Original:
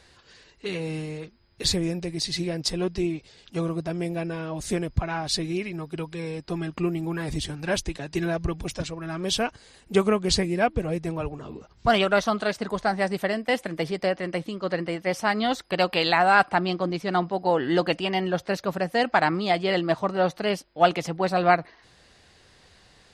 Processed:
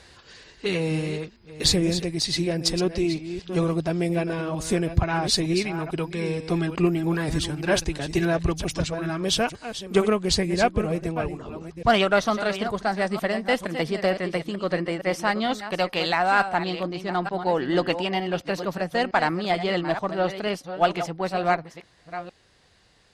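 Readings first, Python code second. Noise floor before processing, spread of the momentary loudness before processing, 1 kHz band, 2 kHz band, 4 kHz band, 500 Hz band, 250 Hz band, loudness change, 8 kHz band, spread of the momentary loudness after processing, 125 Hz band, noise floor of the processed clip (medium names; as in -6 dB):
-57 dBFS, 10 LU, -0.5 dB, 0.0 dB, +2.0 dB, +1.0 dB, +2.0 dB, +1.0 dB, +3.0 dB, 7 LU, +2.5 dB, -57 dBFS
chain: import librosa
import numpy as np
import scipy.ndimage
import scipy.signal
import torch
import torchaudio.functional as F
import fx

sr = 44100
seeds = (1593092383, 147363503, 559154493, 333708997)

y = fx.reverse_delay(x, sr, ms=455, wet_db=-10)
y = fx.cheby_harmonics(y, sr, harmonics=(8,), levels_db=(-34,), full_scale_db=-4.0)
y = fx.rider(y, sr, range_db=10, speed_s=2.0)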